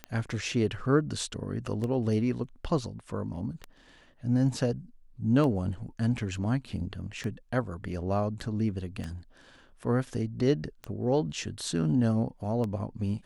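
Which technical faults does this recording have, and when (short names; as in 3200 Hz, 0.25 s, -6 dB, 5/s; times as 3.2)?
tick 33 1/3 rpm -21 dBFS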